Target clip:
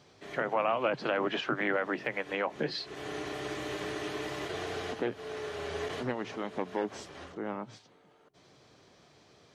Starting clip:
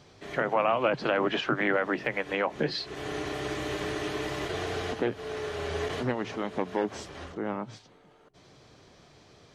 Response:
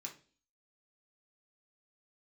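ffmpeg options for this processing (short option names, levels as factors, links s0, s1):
-af "highpass=f=130:p=1,volume=0.668"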